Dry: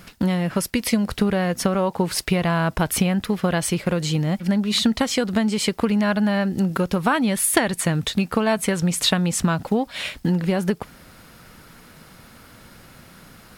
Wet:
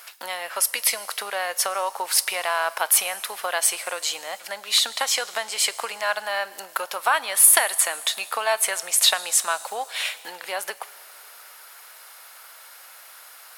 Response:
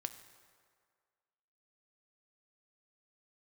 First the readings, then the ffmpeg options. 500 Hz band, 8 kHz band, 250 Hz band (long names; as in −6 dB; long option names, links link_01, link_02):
−6.5 dB, +7.0 dB, below −30 dB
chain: -filter_complex "[0:a]highpass=frequency=670:width=0.5412,highpass=frequency=670:width=1.3066,asplit=2[link_01][link_02];[link_02]aemphasis=mode=production:type=75fm[link_03];[1:a]atrim=start_sample=2205,asetrate=25578,aresample=44100[link_04];[link_03][link_04]afir=irnorm=-1:irlink=0,volume=-8.5dB[link_05];[link_01][link_05]amix=inputs=2:normalize=0,volume=-1.5dB"